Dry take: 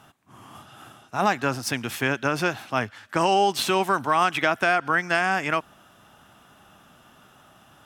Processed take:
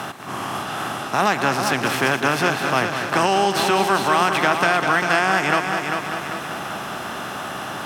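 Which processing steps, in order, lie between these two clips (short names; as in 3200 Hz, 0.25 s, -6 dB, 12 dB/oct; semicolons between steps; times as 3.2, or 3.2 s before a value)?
per-bin compression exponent 0.6; multi-head echo 0.198 s, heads first and second, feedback 49%, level -9.5 dB; three-band squash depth 40%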